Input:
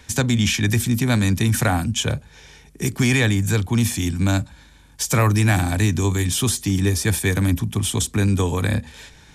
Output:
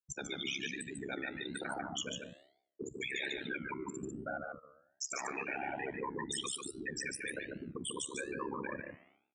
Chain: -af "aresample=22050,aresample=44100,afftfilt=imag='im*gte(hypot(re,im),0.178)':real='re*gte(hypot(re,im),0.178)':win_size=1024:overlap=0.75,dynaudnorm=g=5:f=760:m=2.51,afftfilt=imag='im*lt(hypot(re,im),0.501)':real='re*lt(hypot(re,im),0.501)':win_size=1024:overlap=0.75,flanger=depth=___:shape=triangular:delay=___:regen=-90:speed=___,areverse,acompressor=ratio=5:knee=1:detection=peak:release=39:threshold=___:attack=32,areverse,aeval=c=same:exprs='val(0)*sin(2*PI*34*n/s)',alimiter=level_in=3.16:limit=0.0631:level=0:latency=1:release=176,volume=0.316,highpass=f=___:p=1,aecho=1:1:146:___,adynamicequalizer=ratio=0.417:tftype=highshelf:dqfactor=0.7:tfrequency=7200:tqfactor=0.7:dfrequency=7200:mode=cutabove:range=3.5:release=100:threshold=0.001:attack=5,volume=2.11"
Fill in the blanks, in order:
5, 8.7, 1.2, 0.01, 420, 0.596